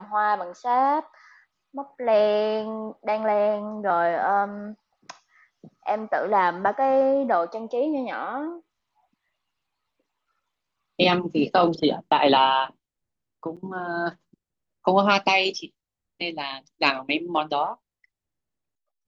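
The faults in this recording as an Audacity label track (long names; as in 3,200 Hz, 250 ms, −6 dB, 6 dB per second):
13.560000	13.570000	drop-out 7.2 ms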